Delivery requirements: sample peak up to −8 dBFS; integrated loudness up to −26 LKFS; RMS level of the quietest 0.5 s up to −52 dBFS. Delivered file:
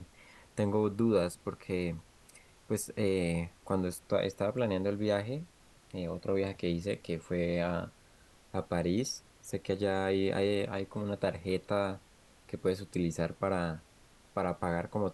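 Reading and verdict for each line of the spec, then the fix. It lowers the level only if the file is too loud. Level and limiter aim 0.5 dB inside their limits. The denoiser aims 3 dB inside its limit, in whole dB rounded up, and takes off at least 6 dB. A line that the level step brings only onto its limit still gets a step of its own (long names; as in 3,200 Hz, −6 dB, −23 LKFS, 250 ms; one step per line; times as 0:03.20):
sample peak −16.0 dBFS: in spec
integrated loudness −33.5 LKFS: in spec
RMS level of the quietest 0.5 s −61 dBFS: in spec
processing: no processing needed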